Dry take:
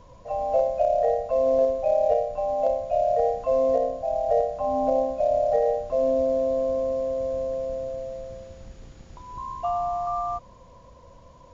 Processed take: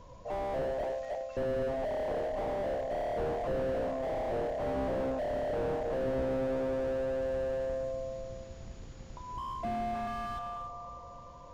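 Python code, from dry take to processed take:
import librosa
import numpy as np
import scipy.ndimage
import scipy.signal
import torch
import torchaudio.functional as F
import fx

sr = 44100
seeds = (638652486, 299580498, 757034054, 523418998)

p1 = fx.cheby1_highpass(x, sr, hz=1300.0, order=5, at=(0.84, 1.37))
p2 = p1 + fx.echo_feedback(p1, sr, ms=308, feedback_pct=51, wet_db=-9.5, dry=0)
p3 = fx.slew_limit(p2, sr, full_power_hz=19.0)
y = p3 * librosa.db_to_amplitude(-2.0)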